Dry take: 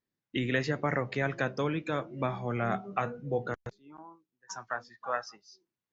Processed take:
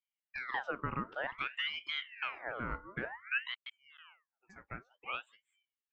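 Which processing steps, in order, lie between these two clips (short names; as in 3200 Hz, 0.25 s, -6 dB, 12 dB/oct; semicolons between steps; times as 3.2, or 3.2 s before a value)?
band-pass 510 Hz, Q 1.7; ring modulator with a swept carrier 1700 Hz, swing 60%, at 0.54 Hz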